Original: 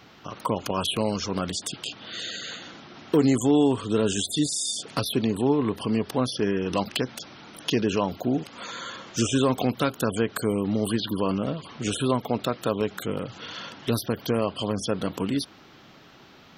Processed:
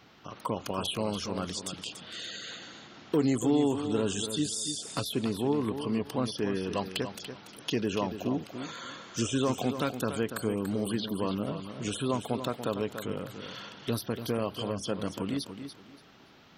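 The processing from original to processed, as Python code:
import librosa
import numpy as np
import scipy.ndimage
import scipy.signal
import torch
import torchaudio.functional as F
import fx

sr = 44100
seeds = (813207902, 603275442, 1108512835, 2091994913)

y = fx.echo_feedback(x, sr, ms=287, feedback_pct=23, wet_db=-9.5)
y = F.gain(torch.from_numpy(y), -6.0).numpy()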